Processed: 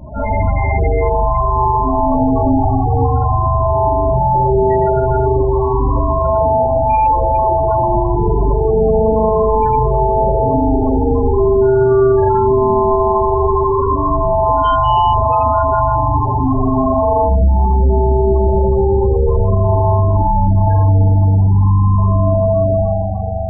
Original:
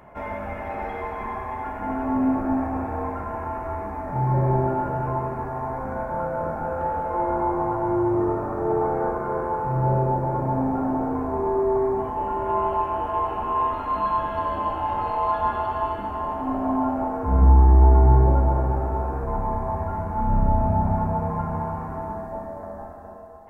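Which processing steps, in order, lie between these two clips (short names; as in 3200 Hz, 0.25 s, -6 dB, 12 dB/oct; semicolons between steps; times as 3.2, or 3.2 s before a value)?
rattling part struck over -24 dBFS, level -25 dBFS; dynamic EQ 190 Hz, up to -4 dB, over -38 dBFS, Q 1.4; in parallel at -9.5 dB: hard clip -21.5 dBFS, distortion -6 dB; on the sum: spring tank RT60 2.5 s, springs 41 ms, chirp 65 ms, DRR -5.5 dB; soft clip -16 dBFS, distortion -9 dB; low shelf 300 Hz +10 dB; flutter echo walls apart 10 m, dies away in 0.4 s; loudest bins only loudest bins 16; hum 60 Hz, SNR 28 dB; limiter -14 dBFS, peak gain reduction 10 dB; gain +8 dB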